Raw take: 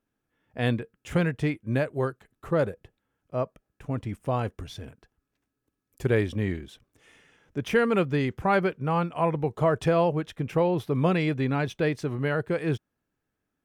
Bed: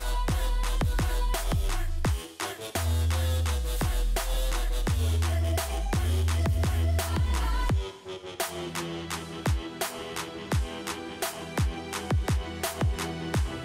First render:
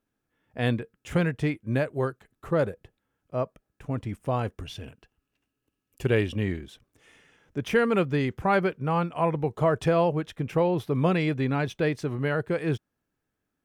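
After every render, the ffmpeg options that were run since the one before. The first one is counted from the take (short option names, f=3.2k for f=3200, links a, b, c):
-filter_complex "[0:a]asettb=1/sr,asplit=3[a][b][c];[a]atrim=end=4.664[d];[b]atrim=start=4.66:end=6.44,asetpts=PTS-STARTPTS,afade=t=in:d=0.004:c=qsin,afade=t=out:st=1.776:d=0.004:c=qsin,equalizer=f=2.8k:t=o:w=0.22:g=13[e];[c]atrim=start=6.436[f];[d][e]acrossfade=d=0.004:c1=hsin:c2=qsin[g];[g][f]acrossfade=d=0.004:c1=qsin:c2=hsin"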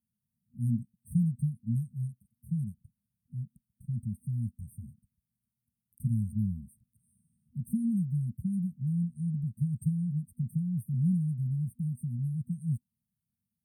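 -af "highpass=87,afftfilt=real='re*(1-between(b*sr/4096,240,8300))':imag='im*(1-between(b*sr/4096,240,8300))':win_size=4096:overlap=0.75"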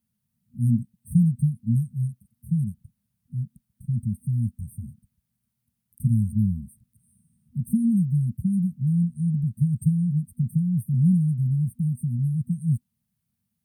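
-af "volume=8dB"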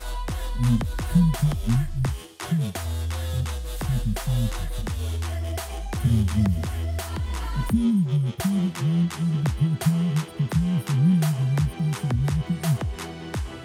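-filter_complex "[1:a]volume=-2dB[a];[0:a][a]amix=inputs=2:normalize=0"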